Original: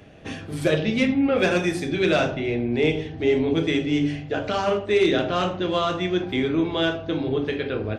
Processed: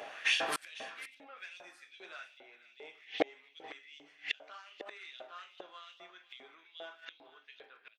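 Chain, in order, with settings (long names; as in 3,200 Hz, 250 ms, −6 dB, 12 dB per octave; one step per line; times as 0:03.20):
automatic gain control gain up to 5.5 dB
far-end echo of a speakerphone 150 ms, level −12 dB
gate with flip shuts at −16 dBFS, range −36 dB
on a send: single-tap delay 498 ms −15 dB
on the sum: auto-filter high-pass saw up 2.5 Hz 620–3,600 Hz
level +5 dB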